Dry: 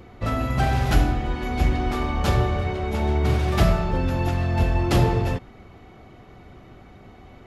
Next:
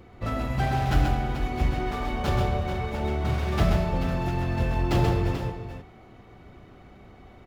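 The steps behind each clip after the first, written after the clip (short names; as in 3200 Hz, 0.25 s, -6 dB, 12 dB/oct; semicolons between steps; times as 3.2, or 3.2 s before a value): median filter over 5 samples; on a send: tapped delay 0.131/0.435 s -4.5/-10 dB; on the sum: gain -4.5 dB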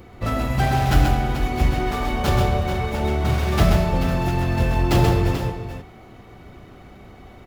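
high shelf 6700 Hz +8 dB; gain +5.5 dB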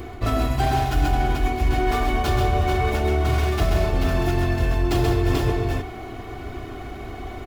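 comb 2.8 ms, depth 62%; reverse; compressor 5:1, threshold -26 dBFS, peak gain reduction 16.5 dB; reverse; gain +8 dB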